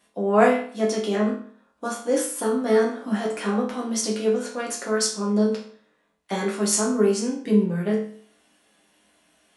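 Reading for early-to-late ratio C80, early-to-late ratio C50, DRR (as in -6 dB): 10.5 dB, 6.0 dB, -3.5 dB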